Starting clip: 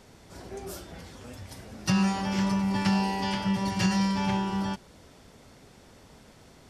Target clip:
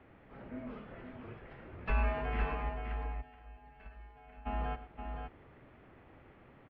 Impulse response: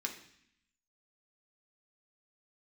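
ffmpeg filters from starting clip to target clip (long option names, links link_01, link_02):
-filter_complex "[0:a]asplit=3[link_01][link_02][link_03];[link_01]afade=type=out:start_time=2.68:duration=0.02[link_04];[link_02]agate=range=-23dB:threshold=-19dB:ratio=16:detection=peak,afade=type=in:start_time=2.68:duration=0.02,afade=type=out:start_time=4.45:duration=0.02[link_05];[link_03]afade=type=in:start_time=4.45:duration=0.02[link_06];[link_04][link_05][link_06]amix=inputs=3:normalize=0,asplit=2[link_07][link_08];[link_08]aecho=0:1:106|522:0.188|0.473[link_09];[link_07][link_09]amix=inputs=2:normalize=0,highpass=frequency=180:width_type=q:width=0.5412,highpass=frequency=180:width_type=q:width=1.307,lowpass=frequency=2700:width_type=q:width=0.5176,lowpass=frequency=2700:width_type=q:width=0.7071,lowpass=frequency=2700:width_type=q:width=1.932,afreqshift=-140,volume=-3.5dB"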